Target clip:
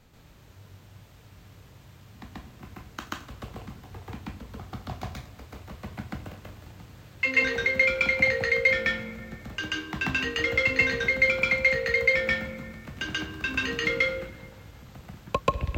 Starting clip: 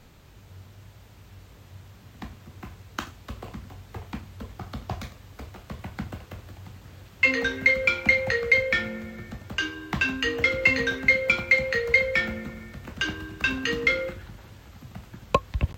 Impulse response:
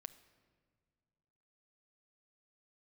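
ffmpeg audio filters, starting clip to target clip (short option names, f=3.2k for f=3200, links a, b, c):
-filter_complex "[0:a]asplit=2[a][b];[1:a]atrim=start_sample=2205,adelay=135[c];[b][c]afir=irnorm=-1:irlink=0,volume=9dB[d];[a][d]amix=inputs=2:normalize=0,volume=-6dB"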